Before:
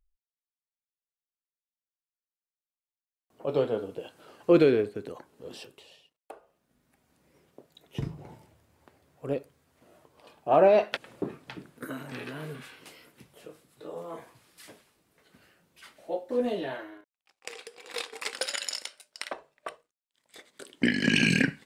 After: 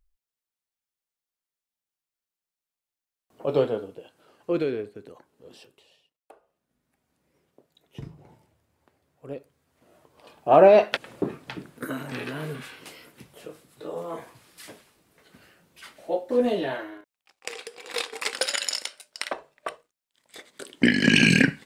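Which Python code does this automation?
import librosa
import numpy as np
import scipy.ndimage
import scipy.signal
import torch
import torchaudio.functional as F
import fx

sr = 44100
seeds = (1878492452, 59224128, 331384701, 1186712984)

y = fx.gain(x, sr, db=fx.line((3.63, 4.0), (4.04, -6.0), (9.33, -6.0), (10.51, 5.5)))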